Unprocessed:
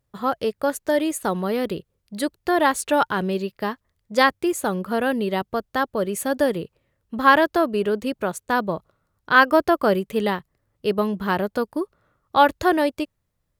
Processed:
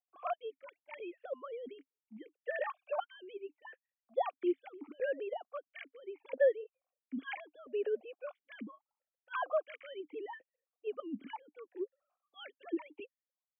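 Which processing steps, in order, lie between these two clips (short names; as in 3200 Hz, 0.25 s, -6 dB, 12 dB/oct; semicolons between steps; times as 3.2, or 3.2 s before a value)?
sine-wave speech; vowel sequencer 3 Hz; gain -5.5 dB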